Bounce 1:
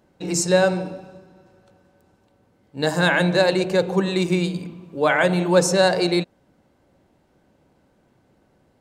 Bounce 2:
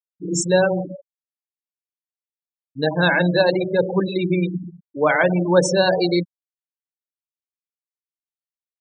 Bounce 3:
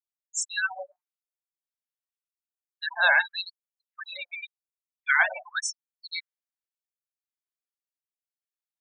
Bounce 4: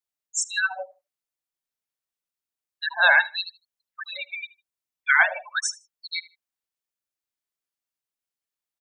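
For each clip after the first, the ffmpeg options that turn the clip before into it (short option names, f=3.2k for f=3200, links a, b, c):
-af "bandreject=f=187.9:t=h:w=4,bandreject=f=375.8:t=h:w=4,bandreject=f=563.7:t=h:w=4,bandreject=f=751.6:t=h:w=4,bandreject=f=939.5:t=h:w=4,bandreject=f=1.1274k:t=h:w=4,bandreject=f=1.3153k:t=h:w=4,bandreject=f=1.5032k:t=h:w=4,bandreject=f=1.6911k:t=h:w=4,bandreject=f=1.879k:t=h:w=4,bandreject=f=2.0669k:t=h:w=4,bandreject=f=2.2548k:t=h:w=4,bandreject=f=2.4427k:t=h:w=4,bandreject=f=2.6306k:t=h:w=4,bandreject=f=2.8185k:t=h:w=4,bandreject=f=3.0064k:t=h:w=4,bandreject=f=3.1943k:t=h:w=4,bandreject=f=3.3822k:t=h:w=4,afftfilt=real='re*gte(hypot(re,im),0.126)':imag='im*gte(hypot(re,im),0.126)':win_size=1024:overlap=0.75,volume=1.5dB"
-af "adynamicequalizer=threshold=0.02:dfrequency=1800:dqfactor=1.3:tfrequency=1800:tqfactor=1.3:attack=5:release=100:ratio=0.375:range=3:mode=boostabove:tftype=bell,afftfilt=real='re*gte(b*sr/1024,540*pow(6700/540,0.5+0.5*sin(2*PI*0.89*pts/sr)))':imag='im*gte(b*sr/1024,540*pow(6700/540,0.5+0.5*sin(2*PI*0.89*pts/sr)))':win_size=1024:overlap=0.75,volume=-5dB"
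-af "aecho=1:1:77|154:0.0944|0.0208,volume=3.5dB"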